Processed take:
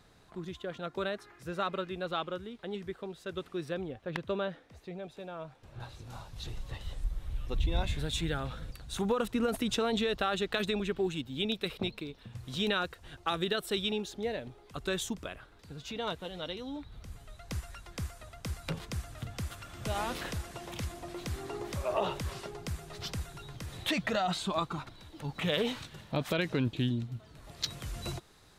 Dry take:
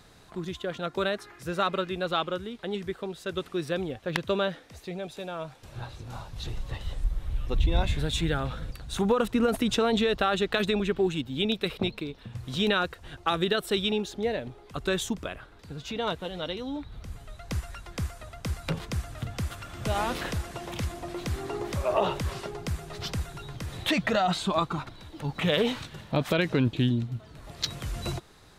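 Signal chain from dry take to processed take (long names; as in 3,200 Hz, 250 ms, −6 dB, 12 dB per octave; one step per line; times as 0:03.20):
high-shelf EQ 3,400 Hz −3.5 dB, from 0:03.74 −9.5 dB, from 0:05.80 +3.5 dB
level −6 dB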